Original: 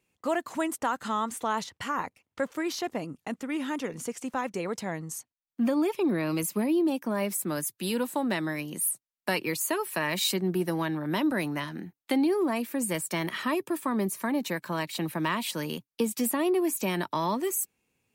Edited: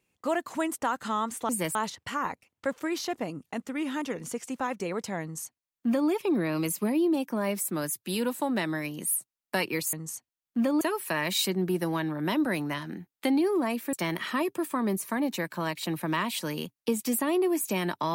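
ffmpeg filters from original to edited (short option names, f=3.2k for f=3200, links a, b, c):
-filter_complex "[0:a]asplit=6[a][b][c][d][e][f];[a]atrim=end=1.492[g];[b]atrim=start=12.788:end=13.052[h];[c]atrim=start=1.488:end=9.672[i];[d]atrim=start=4.958:end=5.842[j];[e]atrim=start=9.668:end=12.792[k];[f]atrim=start=13.048[l];[g][h]acrossfade=d=0.004:c1=hsin:c2=hsin[m];[m][i]acrossfade=d=0.004:c1=hsin:c2=hsin[n];[n][j]acrossfade=d=0.004:c1=hsin:c2=hsin[o];[o][k]acrossfade=d=0.004:c1=hsin:c2=hsin[p];[p][l]acrossfade=d=0.004:c1=hsin:c2=hsin"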